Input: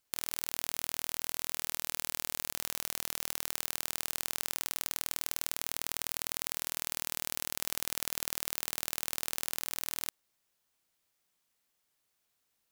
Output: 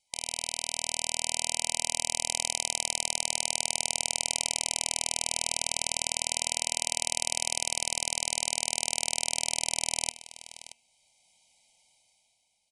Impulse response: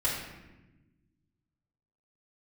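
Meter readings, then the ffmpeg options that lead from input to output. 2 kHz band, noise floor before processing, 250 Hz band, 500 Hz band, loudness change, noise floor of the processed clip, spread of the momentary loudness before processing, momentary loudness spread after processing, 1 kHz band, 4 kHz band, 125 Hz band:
+6.0 dB, −79 dBFS, +1.0 dB, +7.0 dB, +5.5 dB, −71 dBFS, 0 LU, 3 LU, +7.5 dB, +9.0 dB, +4.5 dB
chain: -af "lowshelf=frequency=350:gain=-9,bandreject=frequency=235.3:width_type=h:width=4,bandreject=frequency=470.6:width_type=h:width=4,bandreject=frequency=705.9:width_type=h:width=4,bandreject=frequency=941.2:width_type=h:width=4,bandreject=frequency=1176.5:width_type=h:width=4,bandreject=frequency=1411.8:width_type=h:width=4,bandreject=frequency=1647.1:width_type=h:width=4,bandreject=frequency=1882.4:width_type=h:width=4,bandreject=frequency=2117.7:width_type=h:width=4,bandreject=frequency=2353:width_type=h:width=4,bandreject=frequency=2588.3:width_type=h:width=4,bandreject=frequency=2823.6:width_type=h:width=4,bandreject=frequency=3058.9:width_type=h:width=4,dynaudnorm=framelen=130:gausssize=13:maxgain=11.5dB,aecho=1:1:1.3:0.99,aecho=1:1:628:0.158,afftfilt=real='re*(1-between(b*sr/4096,970,2000))':imag='im*(1-between(b*sr/4096,970,2000))':win_size=4096:overlap=0.75,aresample=22050,aresample=44100,volume=2.5dB"

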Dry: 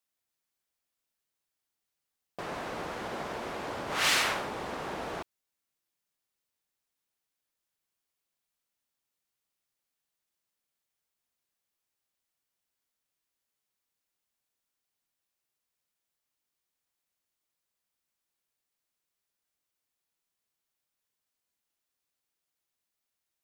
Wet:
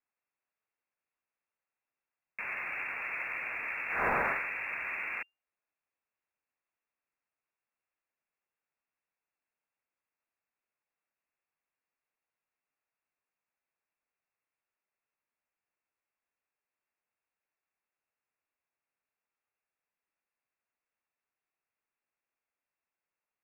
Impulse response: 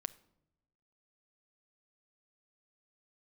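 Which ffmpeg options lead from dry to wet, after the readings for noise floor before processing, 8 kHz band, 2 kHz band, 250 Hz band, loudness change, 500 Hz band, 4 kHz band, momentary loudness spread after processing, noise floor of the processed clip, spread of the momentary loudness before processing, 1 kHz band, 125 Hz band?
below −85 dBFS, below −25 dB, +2.0 dB, −8.0 dB, −1.5 dB, −5.0 dB, below −25 dB, 10 LU, below −85 dBFS, 16 LU, −2.0 dB, −7.0 dB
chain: -af "lowpass=frequency=2400:width_type=q:width=0.5098,lowpass=frequency=2400:width_type=q:width=0.6013,lowpass=frequency=2400:width_type=q:width=0.9,lowpass=frequency=2400:width_type=q:width=2.563,afreqshift=-2800,acrusher=bits=9:mode=log:mix=0:aa=0.000001"

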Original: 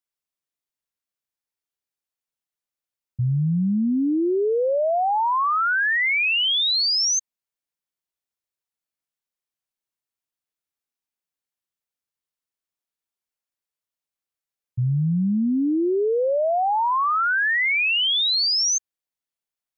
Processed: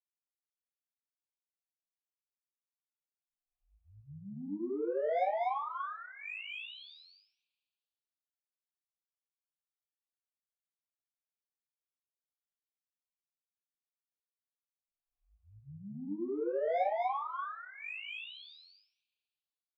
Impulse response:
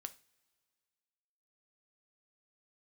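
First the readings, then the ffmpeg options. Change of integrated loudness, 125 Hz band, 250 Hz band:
−16.5 dB, −28.5 dB, −19.5 dB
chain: -filter_complex "[0:a]highpass=frequency=310:width_type=q:width=0.5412,highpass=frequency=310:width_type=q:width=1.307,lowpass=frequency=3300:width_type=q:width=0.5176,lowpass=frequency=3300:width_type=q:width=0.7071,lowpass=frequency=3300:width_type=q:width=1.932,afreqshift=-150,agate=range=-33dB:threshold=-41dB:ratio=3:detection=peak,acrossover=split=510[link_01][link_02];[link_02]acompressor=threshold=-35dB:ratio=12[link_03];[link_01][link_03]amix=inputs=2:normalize=0,asplit=3[link_04][link_05][link_06];[link_04]bandpass=frequency=730:width_type=q:width=8,volume=0dB[link_07];[link_05]bandpass=frequency=1090:width_type=q:width=8,volume=-6dB[link_08];[link_06]bandpass=frequency=2440:width_type=q:width=8,volume=-9dB[link_09];[link_07][link_08][link_09]amix=inputs=3:normalize=0,asoftclip=type=tanh:threshold=-33dB,bandreject=frequency=60:width_type=h:width=6,bandreject=frequency=120:width_type=h:width=6,bandreject=frequency=180:width_type=h:width=6,bandreject=frequency=240:width_type=h:width=6,aecho=1:1:37.9|242:0.316|0.891,asplit=2[link_10][link_11];[1:a]atrim=start_sample=2205,adelay=20[link_12];[link_11][link_12]afir=irnorm=-1:irlink=0,volume=8dB[link_13];[link_10][link_13]amix=inputs=2:normalize=0,volume=-2dB"

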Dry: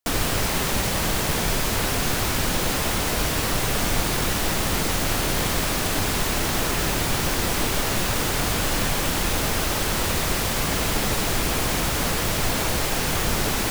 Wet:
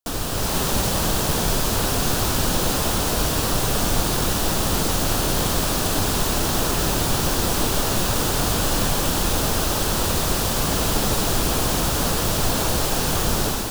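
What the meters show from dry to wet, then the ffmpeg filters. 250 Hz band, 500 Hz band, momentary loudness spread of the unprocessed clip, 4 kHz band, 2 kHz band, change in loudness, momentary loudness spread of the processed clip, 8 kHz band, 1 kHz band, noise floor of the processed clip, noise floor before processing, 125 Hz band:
+2.5 dB, +2.5 dB, 0 LU, +1.0 dB, −2.5 dB, +2.0 dB, 0 LU, +2.5 dB, +1.5 dB, −23 dBFS, −25 dBFS, +2.5 dB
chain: -af "equalizer=frequency=2100:width_type=o:width=0.6:gain=-9.5,dynaudnorm=framelen=280:gausssize=3:maxgain=6dB,volume=-3dB"

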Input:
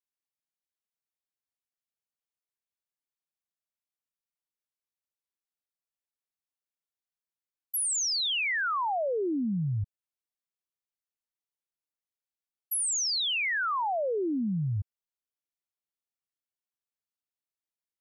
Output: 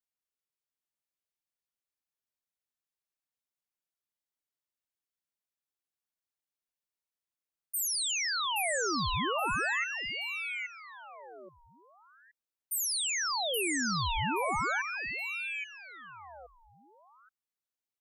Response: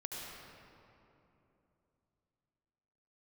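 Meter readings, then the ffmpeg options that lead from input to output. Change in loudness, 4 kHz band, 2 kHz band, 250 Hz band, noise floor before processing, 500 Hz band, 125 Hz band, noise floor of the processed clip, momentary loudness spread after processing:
−2.5 dB, −1.5 dB, +1.0 dB, −6.0 dB, below −85 dBFS, −4.5 dB, −8.0 dB, below −85 dBFS, 19 LU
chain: -af "aecho=1:1:824|1648|2472:0.562|0.141|0.0351,aeval=exprs='val(0)*sin(2*PI*1500*n/s+1500*0.7/0.39*sin(2*PI*0.39*n/s))':channel_layout=same"

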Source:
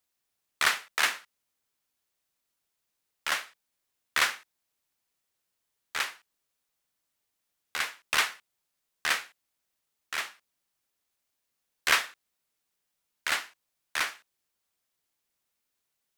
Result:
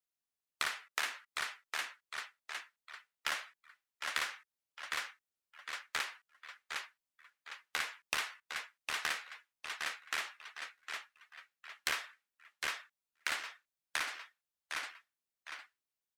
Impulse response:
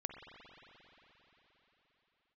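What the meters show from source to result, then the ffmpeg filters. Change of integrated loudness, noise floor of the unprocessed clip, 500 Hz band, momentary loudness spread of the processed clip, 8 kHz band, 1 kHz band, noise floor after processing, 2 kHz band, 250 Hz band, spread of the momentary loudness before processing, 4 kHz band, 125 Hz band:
−10.5 dB, −82 dBFS, −7.5 dB, 17 LU, −7.5 dB, −7.0 dB, below −85 dBFS, −7.0 dB, −7.5 dB, 12 LU, −7.0 dB, can't be measured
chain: -filter_complex "[0:a]asplit=2[link_01][link_02];[link_02]aecho=0:1:757|1514|2271|3028:0.282|0.113|0.0451|0.018[link_03];[link_01][link_03]amix=inputs=2:normalize=0,acompressor=threshold=-34dB:ratio=8,afftdn=noise_reduction=15:noise_floor=-57,volume=1.5dB"

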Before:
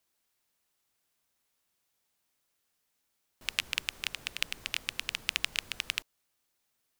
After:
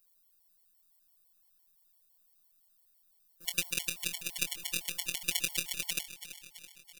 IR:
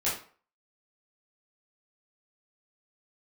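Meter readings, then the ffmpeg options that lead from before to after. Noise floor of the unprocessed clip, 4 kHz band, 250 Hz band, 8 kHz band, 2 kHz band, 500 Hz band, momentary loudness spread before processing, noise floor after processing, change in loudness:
−79 dBFS, −3.0 dB, +6.5 dB, +7.0 dB, −3.5 dB, +3.5 dB, 4 LU, −69 dBFS, 0.0 dB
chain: -filter_complex "[0:a]aeval=exprs='if(lt(val(0),0),0.447*val(0),val(0))':channel_layout=same,aemphasis=mode=production:type=50fm,afftfilt=real='hypot(re,im)*cos(PI*b)':imag='0':win_size=1024:overlap=0.75,asplit=2[link_01][link_02];[link_02]adelay=23,volume=-8dB[link_03];[link_01][link_03]amix=inputs=2:normalize=0,asplit=2[link_04][link_05];[link_05]aecho=0:1:332|664|996|1328|1660|1992:0.224|0.132|0.0779|0.046|0.0271|0.016[link_06];[link_04][link_06]amix=inputs=2:normalize=0,afftfilt=real='re*gt(sin(2*PI*5.9*pts/sr)*(1-2*mod(floor(b*sr/1024/580),2)),0)':imag='im*gt(sin(2*PI*5.9*pts/sr)*(1-2*mod(floor(b*sr/1024/580),2)),0)':win_size=1024:overlap=0.75,volume=3dB"

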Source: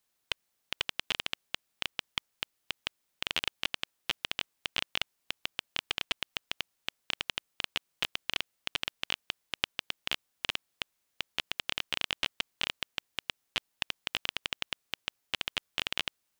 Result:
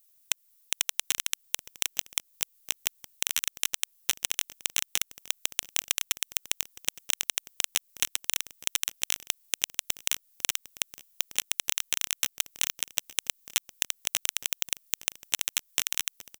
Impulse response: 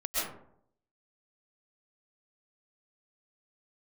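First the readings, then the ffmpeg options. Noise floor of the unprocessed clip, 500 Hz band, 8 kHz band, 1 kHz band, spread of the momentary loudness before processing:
−79 dBFS, −2.0 dB, +20.5 dB, −2.0 dB, 6 LU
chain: -filter_complex "[0:a]highshelf=frequency=8700:gain=10,acrossover=split=860|4300[link_01][link_02][link_03];[link_01]acompressor=threshold=-48dB:ratio=4[link_04];[link_02]acompressor=threshold=-32dB:ratio=4[link_05];[link_03]acompressor=threshold=-44dB:ratio=4[link_06];[link_04][link_05][link_06]amix=inputs=3:normalize=0,aeval=exprs='max(val(0),0)':channel_layout=same,asplit=2[link_07][link_08];[link_08]aecho=0:1:865:0.224[link_09];[link_07][link_09]amix=inputs=2:normalize=0,crystalizer=i=4.5:c=0,asplit=2[link_10][link_11];[link_11]aeval=exprs='clip(val(0),-1,0.0841)':channel_layout=same,volume=-5.5dB[link_12];[link_10][link_12]amix=inputs=2:normalize=0,aeval=exprs='0.668*(cos(1*acos(clip(val(0)/0.668,-1,1)))-cos(1*PI/2))+0.0668*(cos(7*acos(clip(val(0)/0.668,-1,1)))-cos(7*PI/2))+0.0531*(cos(8*acos(clip(val(0)/0.668,-1,1)))-cos(8*PI/2))':channel_layout=same,volume=1.5dB"

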